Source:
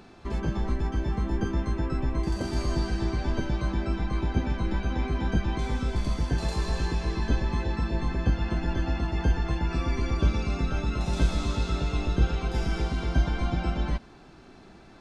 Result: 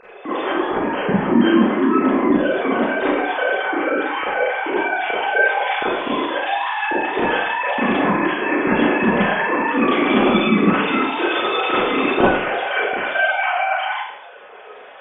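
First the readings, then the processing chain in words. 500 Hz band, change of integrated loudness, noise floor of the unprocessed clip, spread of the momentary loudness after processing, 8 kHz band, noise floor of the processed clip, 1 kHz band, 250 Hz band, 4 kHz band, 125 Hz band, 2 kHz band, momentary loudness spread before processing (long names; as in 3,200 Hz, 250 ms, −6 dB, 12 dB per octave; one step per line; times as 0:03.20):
+16.0 dB, +10.5 dB, −51 dBFS, 6 LU, can't be measured, −40 dBFS, +17.5 dB, +12.5 dB, +12.5 dB, −5.0 dB, +20.0 dB, 3 LU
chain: three sine waves on the formant tracks
four-comb reverb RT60 0.69 s, combs from 30 ms, DRR −9 dB
level −2 dB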